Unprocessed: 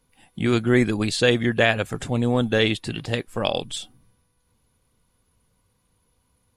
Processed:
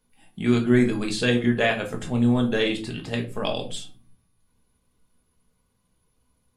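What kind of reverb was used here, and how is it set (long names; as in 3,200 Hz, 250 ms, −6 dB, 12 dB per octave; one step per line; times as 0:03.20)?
rectangular room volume 210 cubic metres, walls furnished, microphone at 1.4 metres
level −5.5 dB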